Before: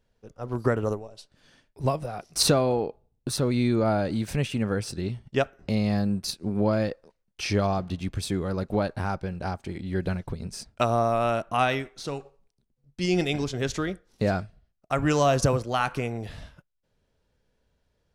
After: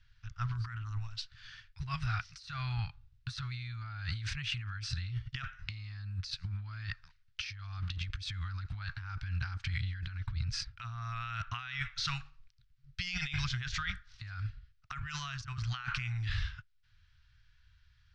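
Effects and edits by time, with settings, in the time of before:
0:10.19–0:11.02: high-shelf EQ 5,300 Hz −6.5 dB
whole clip: Chebyshev band-stop filter 110–1,400 Hz, order 3; compressor whose output falls as the input rises −41 dBFS, ratio −1; low-pass filter 5,100 Hz 24 dB per octave; level +3 dB

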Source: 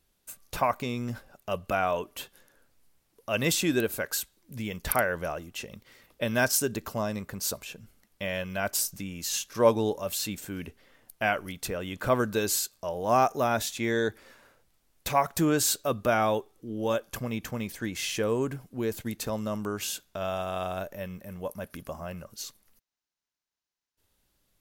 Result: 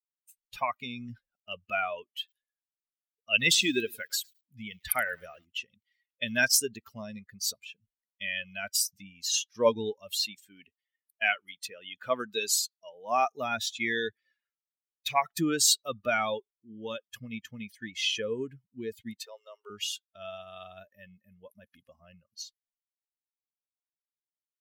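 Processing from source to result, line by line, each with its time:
0:02.03–0:05.45: feedback echo at a low word length 108 ms, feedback 55%, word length 6 bits, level −13 dB
0:10.26–0:13.27: high-pass filter 230 Hz 6 dB per octave
0:19.18–0:19.70: elliptic high-pass filter 380 Hz
whole clip: spectral dynamics exaggerated over time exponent 2; meter weighting curve D

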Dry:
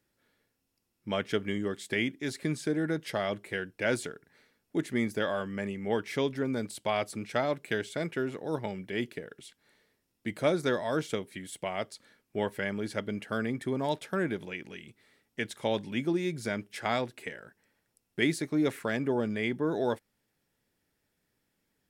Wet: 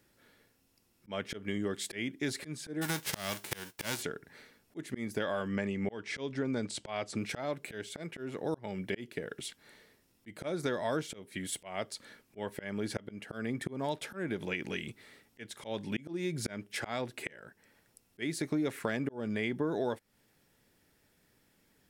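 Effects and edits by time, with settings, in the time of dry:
0:02.81–0:04.01: spectral envelope flattened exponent 0.3
0:05.48–0:07.17: low-pass filter 8,000 Hz 24 dB per octave
whole clip: volume swells 504 ms; downward compressor 5 to 1, threshold −39 dBFS; level +8.5 dB

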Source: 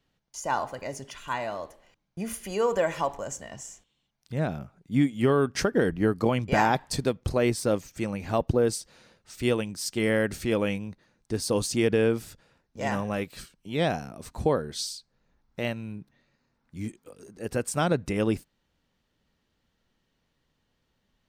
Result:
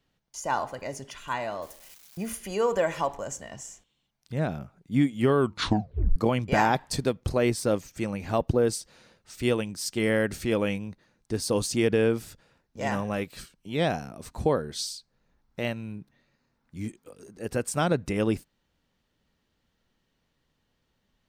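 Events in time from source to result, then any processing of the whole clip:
0:01.62–0:02.30: spike at every zero crossing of −39.5 dBFS
0:05.39: tape stop 0.77 s

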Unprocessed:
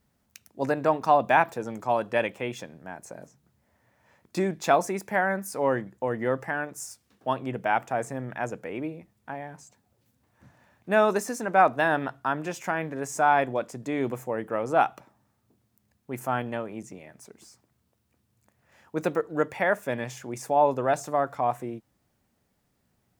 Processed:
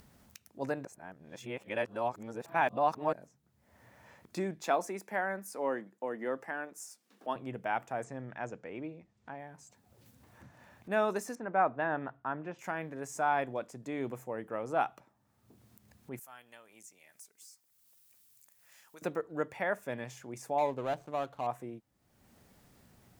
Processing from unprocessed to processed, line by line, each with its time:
0:00.85–0:03.13: reverse
0:04.64–0:07.36: high-pass filter 200 Hz 24 dB per octave
0:08.04–0:09.39: low-pass filter 7,300 Hz 24 dB per octave
0:11.35–0:12.59: low-pass filter 2,000 Hz
0:16.19–0:19.02: first-order pre-emphasis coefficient 0.97
0:20.58–0:21.47: running median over 25 samples
whole clip: upward compression, threshold −37 dBFS; level −8.5 dB

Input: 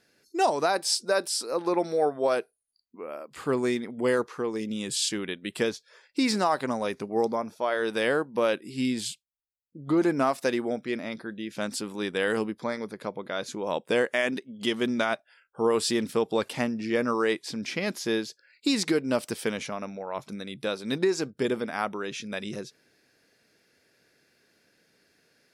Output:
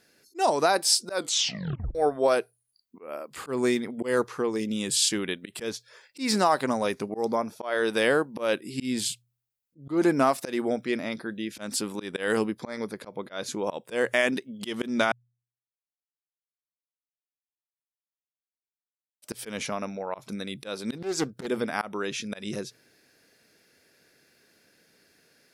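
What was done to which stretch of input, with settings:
0:01.13: tape stop 0.82 s
0:15.12–0:19.22: silence
0:20.97–0:21.47: highs frequency-modulated by the lows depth 0.34 ms
whole clip: high-shelf EQ 9,800 Hz +7.5 dB; hum removal 60.25 Hz, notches 2; volume swells 154 ms; level +2.5 dB

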